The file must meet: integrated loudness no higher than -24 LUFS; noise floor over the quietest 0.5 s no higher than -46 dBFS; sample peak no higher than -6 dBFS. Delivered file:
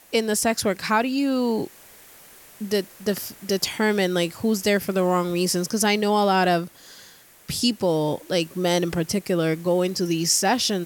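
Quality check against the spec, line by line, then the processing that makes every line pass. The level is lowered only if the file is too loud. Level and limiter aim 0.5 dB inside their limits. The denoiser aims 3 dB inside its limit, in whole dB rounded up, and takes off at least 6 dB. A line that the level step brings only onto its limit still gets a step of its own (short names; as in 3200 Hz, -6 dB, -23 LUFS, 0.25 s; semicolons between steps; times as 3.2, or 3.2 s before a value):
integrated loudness -22.5 LUFS: fail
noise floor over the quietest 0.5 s -49 dBFS: OK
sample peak -7.0 dBFS: OK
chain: gain -2 dB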